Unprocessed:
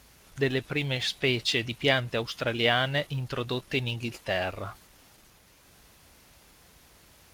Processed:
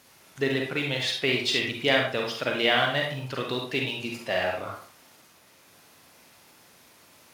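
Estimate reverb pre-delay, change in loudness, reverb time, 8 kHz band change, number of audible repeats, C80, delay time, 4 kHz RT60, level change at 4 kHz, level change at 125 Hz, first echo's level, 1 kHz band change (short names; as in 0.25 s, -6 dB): 37 ms, +2.0 dB, 0.45 s, +1.5 dB, none, 9.0 dB, none, 0.30 s, +2.0 dB, -4.0 dB, none, +3.0 dB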